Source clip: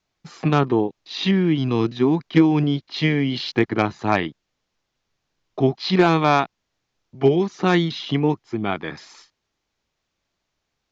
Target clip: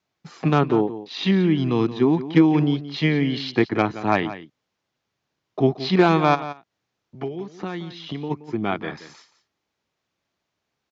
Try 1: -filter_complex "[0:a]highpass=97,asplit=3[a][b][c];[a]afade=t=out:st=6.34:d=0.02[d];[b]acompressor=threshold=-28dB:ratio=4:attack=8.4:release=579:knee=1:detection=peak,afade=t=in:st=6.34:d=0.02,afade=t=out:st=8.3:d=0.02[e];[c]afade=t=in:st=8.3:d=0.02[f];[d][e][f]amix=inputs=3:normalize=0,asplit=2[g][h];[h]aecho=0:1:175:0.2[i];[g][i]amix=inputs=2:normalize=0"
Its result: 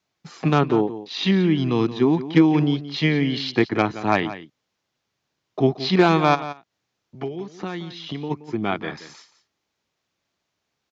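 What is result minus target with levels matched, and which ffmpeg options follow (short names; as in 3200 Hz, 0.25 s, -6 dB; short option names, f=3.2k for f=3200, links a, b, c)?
8000 Hz band +3.5 dB
-filter_complex "[0:a]highpass=97,highshelf=f=3.6k:g=-5,asplit=3[a][b][c];[a]afade=t=out:st=6.34:d=0.02[d];[b]acompressor=threshold=-28dB:ratio=4:attack=8.4:release=579:knee=1:detection=peak,afade=t=in:st=6.34:d=0.02,afade=t=out:st=8.3:d=0.02[e];[c]afade=t=in:st=8.3:d=0.02[f];[d][e][f]amix=inputs=3:normalize=0,asplit=2[g][h];[h]aecho=0:1:175:0.2[i];[g][i]amix=inputs=2:normalize=0"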